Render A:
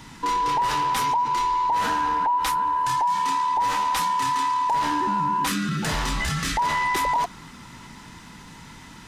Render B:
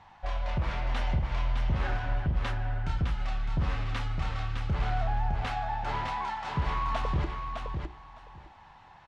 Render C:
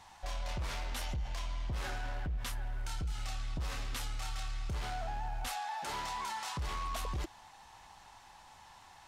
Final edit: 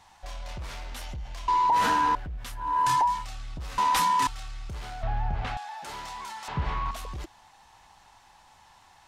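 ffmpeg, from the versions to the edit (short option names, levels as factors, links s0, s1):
-filter_complex "[0:a]asplit=3[s0][s1][s2];[1:a]asplit=2[s3][s4];[2:a]asplit=6[s5][s6][s7][s8][s9][s10];[s5]atrim=end=1.482[s11];[s0]atrim=start=1.478:end=2.152[s12];[s6]atrim=start=2.148:end=2.8[s13];[s1]atrim=start=2.56:end=3.26[s14];[s7]atrim=start=3.02:end=3.782[s15];[s2]atrim=start=3.778:end=4.272[s16];[s8]atrim=start=4.268:end=5.032[s17];[s3]atrim=start=5.028:end=5.572[s18];[s9]atrim=start=5.568:end=6.482[s19];[s4]atrim=start=6.478:end=6.912[s20];[s10]atrim=start=6.908[s21];[s11][s12]acrossfade=d=0.004:c1=hsin:c2=hsin[s22];[s22][s13]acrossfade=d=0.004:c1=hsin:c2=hsin[s23];[s23][s14]acrossfade=d=0.24:c1=tri:c2=tri[s24];[s24][s15]acrossfade=d=0.24:c1=tri:c2=tri[s25];[s25][s16]acrossfade=d=0.004:c1=hsin:c2=hsin[s26];[s26][s17]acrossfade=d=0.004:c1=hsin:c2=hsin[s27];[s27][s18]acrossfade=d=0.004:c1=hsin:c2=hsin[s28];[s28][s19]acrossfade=d=0.004:c1=hsin:c2=hsin[s29];[s29][s20]acrossfade=d=0.004:c1=hsin:c2=hsin[s30];[s30][s21]acrossfade=d=0.004:c1=hsin:c2=hsin"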